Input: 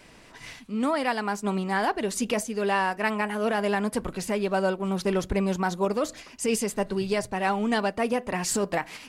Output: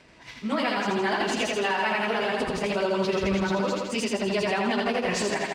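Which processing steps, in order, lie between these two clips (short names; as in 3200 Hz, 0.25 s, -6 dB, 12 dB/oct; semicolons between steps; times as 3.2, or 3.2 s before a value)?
LPF 5800 Hz 12 dB/oct; dynamic EQ 3400 Hz, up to +8 dB, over -45 dBFS, Q 0.76; plain phase-vocoder stretch 0.61×; in parallel at -6.5 dB: crossover distortion -46 dBFS; on the sum: HPF 41 Hz; feedback echo 82 ms, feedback 60%, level -3.5 dB; on a send at -14.5 dB: reverb RT60 0.55 s, pre-delay 3 ms; on the sum: limiter -16.5 dBFS, peak gain reduction 7 dB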